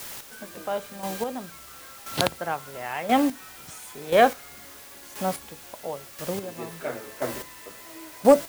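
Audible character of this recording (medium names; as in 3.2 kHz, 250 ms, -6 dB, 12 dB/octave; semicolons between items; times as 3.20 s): a quantiser's noise floor 6-bit, dither triangular; chopped level 0.97 Hz, depth 60%, duty 20%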